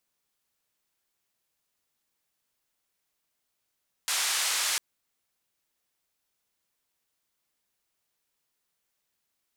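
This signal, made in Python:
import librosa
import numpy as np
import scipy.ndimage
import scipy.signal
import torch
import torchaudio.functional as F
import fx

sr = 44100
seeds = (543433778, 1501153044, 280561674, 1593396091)

y = fx.band_noise(sr, seeds[0], length_s=0.7, low_hz=1000.0, high_hz=9000.0, level_db=-28.0)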